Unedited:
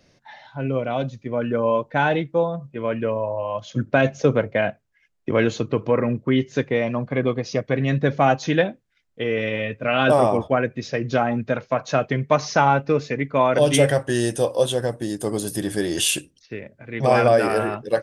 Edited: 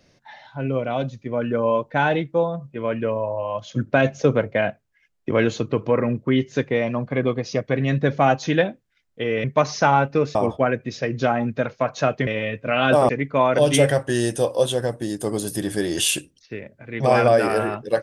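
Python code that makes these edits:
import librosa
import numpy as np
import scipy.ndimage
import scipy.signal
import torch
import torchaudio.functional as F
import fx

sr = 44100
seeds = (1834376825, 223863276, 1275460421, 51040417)

y = fx.edit(x, sr, fx.swap(start_s=9.44, length_s=0.82, other_s=12.18, other_length_s=0.91), tone=tone)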